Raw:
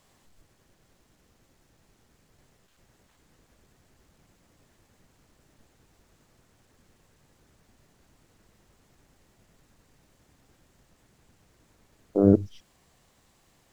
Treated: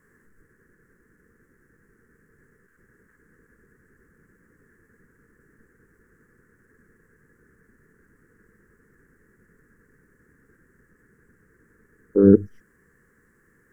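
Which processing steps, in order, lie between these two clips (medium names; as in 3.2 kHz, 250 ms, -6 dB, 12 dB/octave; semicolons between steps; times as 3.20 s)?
FFT filter 110 Hz 0 dB, 210 Hz +6 dB, 300 Hz +4 dB, 460 Hz +9 dB, 670 Hz -21 dB, 1.7 kHz +15 dB, 2.5 kHz -15 dB, 3.7 kHz -27 dB, 5.7 kHz -13 dB, 9.6 kHz -3 dB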